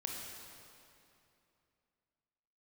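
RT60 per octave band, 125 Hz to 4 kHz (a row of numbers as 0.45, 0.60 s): 3.0, 3.0, 2.8, 2.7, 2.5, 2.2 s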